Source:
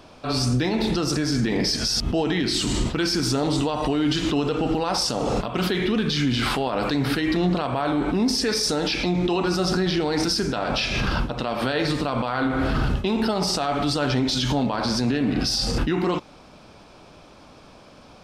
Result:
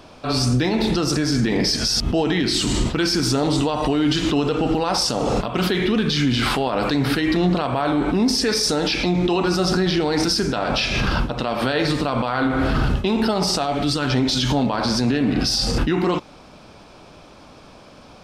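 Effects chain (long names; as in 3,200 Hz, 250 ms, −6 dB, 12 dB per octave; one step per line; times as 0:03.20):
0:13.62–0:14.10: parametric band 1,900 Hz → 490 Hz −8.5 dB 0.85 octaves
level +3 dB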